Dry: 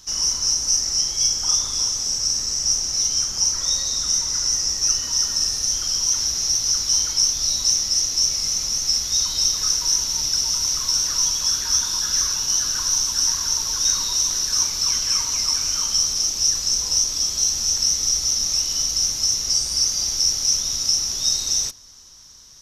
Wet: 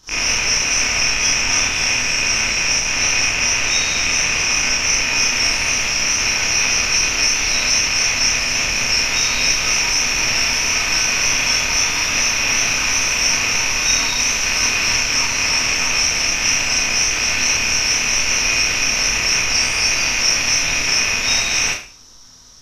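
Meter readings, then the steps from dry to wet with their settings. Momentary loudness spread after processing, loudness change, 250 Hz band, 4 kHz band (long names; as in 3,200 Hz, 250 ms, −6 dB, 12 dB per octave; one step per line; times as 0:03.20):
1 LU, +3.5 dB, +12.5 dB, +2.5 dB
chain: loose part that buzzes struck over −50 dBFS, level −10 dBFS
high-shelf EQ 3,800 Hz −10 dB
four-comb reverb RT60 0.4 s, combs from 25 ms, DRR −7.5 dB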